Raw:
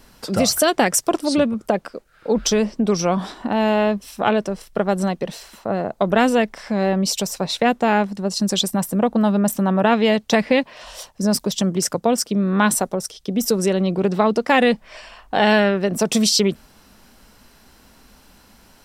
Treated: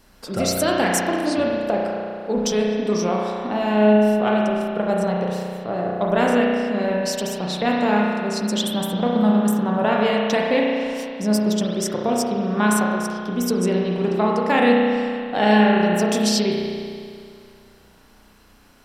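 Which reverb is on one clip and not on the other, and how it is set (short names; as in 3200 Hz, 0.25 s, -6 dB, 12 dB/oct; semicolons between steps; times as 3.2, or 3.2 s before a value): spring tank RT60 2.3 s, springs 33 ms, chirp 45 ms, DRR -2.5 dB; gain -5.5 dB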